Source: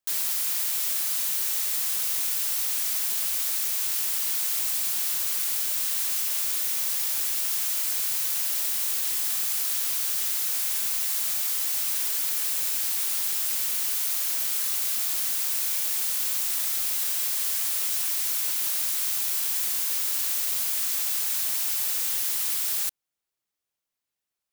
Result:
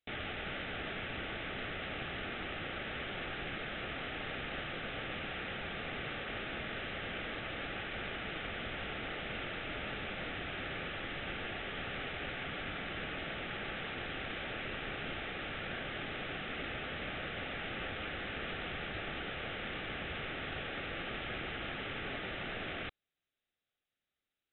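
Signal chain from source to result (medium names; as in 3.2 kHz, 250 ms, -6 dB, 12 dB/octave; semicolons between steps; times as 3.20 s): band-stop 2.9 kHz, Q 6.3; frequency inversion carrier 3.9 kHz; trim +2 dB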